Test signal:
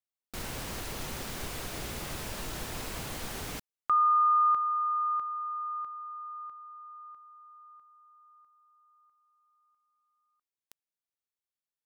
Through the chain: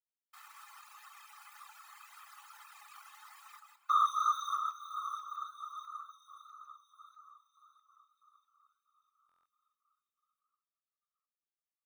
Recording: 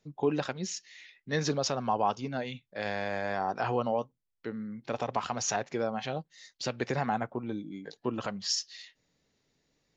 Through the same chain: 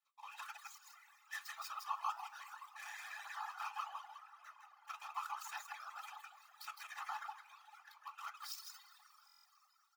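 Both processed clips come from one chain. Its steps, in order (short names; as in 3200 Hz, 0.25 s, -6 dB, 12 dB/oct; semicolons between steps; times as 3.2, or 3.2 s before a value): median filter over 15 samples; on a send: echo 0.161 s -3.5 dB; on the sum: plate-style reverb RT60 4.5 s, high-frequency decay 0.8×, DRR 6 dB; whisperiser; reverb removal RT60 1.3 s; bell 4400 Hz -6 dB 0.84 oct; notch 1900 Hz, Q 14; comb 1.6 ms, depth 60%; flange 1.8 Hz, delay 7.8 ms, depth 4.2 ms, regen -77%; rippled Chebyshev high-pass 840 Hz, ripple 3 dB; tilt +2 dB/oct; stuck buffer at 9.27, samples 1024, times 7; gain -1.5 dB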